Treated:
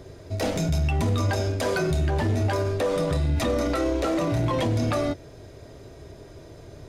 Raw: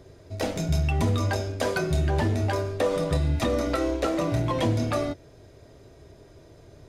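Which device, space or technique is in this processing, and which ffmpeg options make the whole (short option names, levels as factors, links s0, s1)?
soft clipper into limiter: -af "asoftclip=type=tanh:threshold=0.168,alimiter=limit=0.0668:level=0:latency=1:release=31,volume=2"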